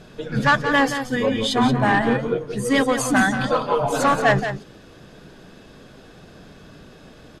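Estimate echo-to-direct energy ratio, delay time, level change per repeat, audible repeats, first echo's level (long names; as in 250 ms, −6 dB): −9.0 dB, 177 ms, repeats not evenly spaced, 1, −9.0 dB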